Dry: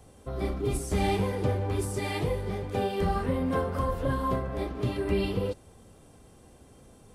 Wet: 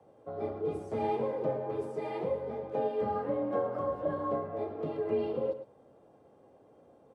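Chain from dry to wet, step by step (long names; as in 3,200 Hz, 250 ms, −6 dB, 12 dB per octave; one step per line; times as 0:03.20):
frequency shifter +33 Hz
resonant band-pass 570 Hz, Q 1.3
slap from a distant wall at 19 metres, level −11 dB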